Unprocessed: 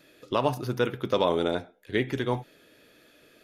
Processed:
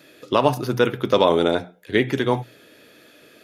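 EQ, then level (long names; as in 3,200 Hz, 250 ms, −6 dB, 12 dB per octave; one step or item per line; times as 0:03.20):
high-pass filter 87 Hz
mains-hum notches 60/120/180 Hz
+7.5 dB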